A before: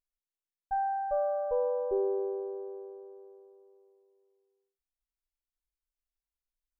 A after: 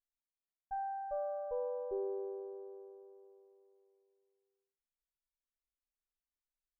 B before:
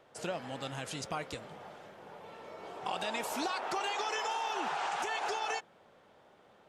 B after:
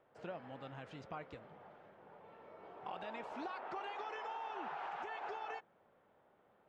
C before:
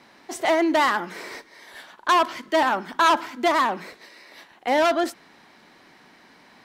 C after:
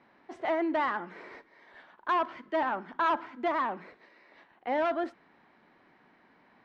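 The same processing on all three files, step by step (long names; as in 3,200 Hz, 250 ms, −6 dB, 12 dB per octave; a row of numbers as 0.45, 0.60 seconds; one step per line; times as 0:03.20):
low-pass filter 2,100 Hz 12 dB per octave
level −8.5 dB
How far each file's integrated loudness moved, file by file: −8.5, −10.0, −9.0 LU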